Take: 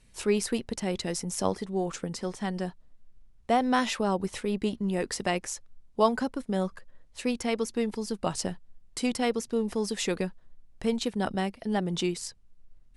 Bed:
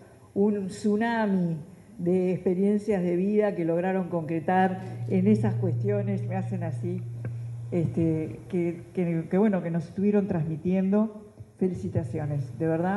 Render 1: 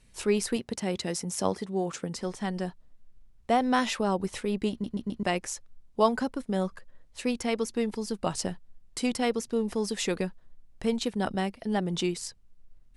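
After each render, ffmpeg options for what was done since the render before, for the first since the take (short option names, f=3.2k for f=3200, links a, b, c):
-filter_complex "[0:a]asettb=1/sr,asplit=3[a][b][c];[a]atrim=end=0.564[d];[b]atrim=start=0.56:end=2.16,asetpts=PTS-STARTPTS,afade=t=in:d=0.004:c=qsin,afade=t=out:st=1.596:d=0.004:c=qsin,highpass=79[e];[c]atrim=start=2.156[f];[d][e]acrossfade=d=0.004:c1=hsin:c2=qsin[g];[g][f]acrossfade=d=0.004:c1=qsin:c2=hsin,asplit=5[h][i][j][k][l];[h]atrim=end=4.842[m];[i]atrim=start=4.708:end=4.842[n];[j]atrim=start=4.708:end=4.842[o];[k]atrim=start=4.708:end=4.842[p];[l]atrim=start=5.228[q];[m][n]acrossfade=d=0.004:c1=hsin:c2=hsin[r];[r][o]acrossfade=d=0.004:c1=hsin:c2=hsin[s];[s][p]acrossfade=d=0.004:c1=hsin:c2=hsin[t];[t][q]acrossfade=d=0.004:c1=hsin:c2=hsin"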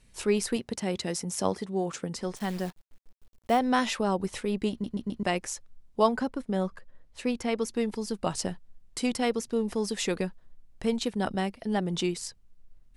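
-filter_complex "[0:a]asettb=1/sr,asplit=3[a][b][c];[a]atrim=end=2.364[d];[b]atrim=start=2.36:end=3.59,asetpts=PTS-STARTPTS,afade=t=in:d=0.004:c=qsin,afade=t=out:st=1.226:d=0.004:c=qsin,acrusher=bits=8:dc=4:mix=0:aa=0.000001[e];[c]atrim=start=3.586[f];[d][e]acrossfade=d=0.004:c1=hsin:c2=qsin[g];[g][f]acrossfade=d=0.004:c1=qsin:c2=hsin,asettb=1/sr,asplit=3[h][i][j];[h]atrim=end=6.074[k];[i]atrim=start=6.07:end=7.62,asetpts=PTS-STARTPTS,afade=t=in:d=0.004:c=qsin,afade=t=out:st=1.546:d=0.004:c=qsin,highshelf=f=4.2k:g=-6[l];[j]atrim=start=7.616[m];[k][l]acrossfade=d=0.004:c1=hsin:c2=qsin[n];[n][m]acrossfade=d=0.004:c1=qsin:c2=hsin"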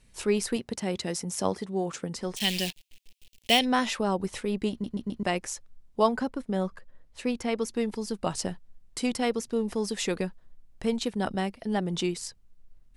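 -filter_complex "[0:a]asplit=3[a][b][c];[a]afade=t=out:st=2.36:d=0.02[d];[b]highshelf=f=1.9k:t=q:w=3:g=13,afade=t=in:st=2.36:d=0.02,afade=t=out:st=3.64:d=0.02[e];[c]afade=t=in:st=3.64:d=0.02[f];[d][e][f]amix=inputs=3:normalize=0"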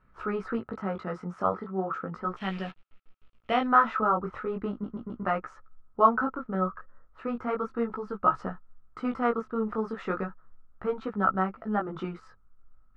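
-af "flanger=delay=15:depth=7.8:speed=0.36,lowpass=f=1.3k:t=q:w=14"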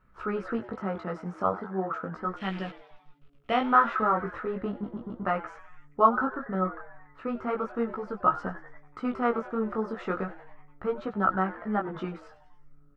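-filter_complex "[0:a]asplit=6[a][b][c][d][e][f];[b]adelay=95,afreqshift=140,volume=-17.5dB[g];[c]adelay=190,afreqshift=280,volume=-22.1dB[h];[d]adelay=285,afreqshift=420,volume=-26.7dB[i];[e]adelay=380,afreqshift=560,volume=-31.2dB[j];[f]adelay=475,afreqshift=700,volume=-35.8dB[k];[a][g][h][i][j][k]amix=inputs=6:normalize=0"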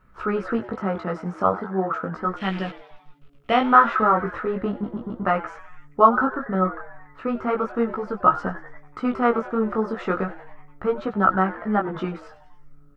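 -af "volume=6.5dB,alimiter=limit=-2dB:level=0:latency=1"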